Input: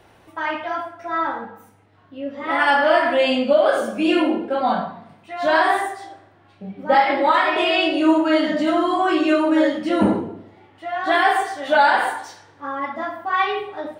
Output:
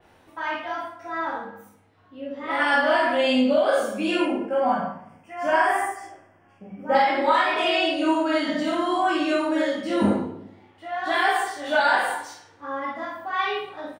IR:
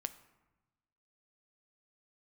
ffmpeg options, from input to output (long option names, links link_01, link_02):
-filter_complex "[0:a]asettb=1/sr,asplit=3[link_01][link_02][link_03];[link_01]atrim=end=4.204[link_04];[link_02]atrim=start=4.2:end=6.95,asetpts=PTS-STARTPTS,afade=type=in:duration=0.004:curve=qsin,afade=type=out:start_time=2.746:duration=0.004:curve=qsin,asuperstop=centerf=3900:order=4:qfactor=2[link_05];[link_03]atrim=start=6.946[link_06];[link_04][link_05]acrossfade=duration=0.004:curve1=hsin:curve2=qsin[link_07];[link_07][link_06]acrossfade=duration=0.004:curve1=qsin:curve2=hsin,aecho=1:1:24|44|55:0.531|0.501|0.531[link_08];[1:a]atrim=start_sample=2205,asetrate=74970,aresample=44100[link_09];[link_08][link_09]afir=irnorm=-1:irlink=0,adynamicequalizer=threshold=0.00891:dfrequency=4200:dqfactor=0.7:tfrequency=4200:tqfactor=0.7:attack=5:release=100:ratio=0.375:range=2.5:mode=boostabove:tftype=highshelf"